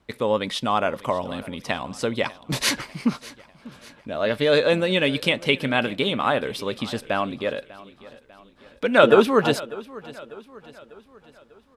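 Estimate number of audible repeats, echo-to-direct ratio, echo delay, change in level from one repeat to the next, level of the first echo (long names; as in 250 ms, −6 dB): 3, −18.5 dB, 596 ms, −6.0 dB, −19.5 dB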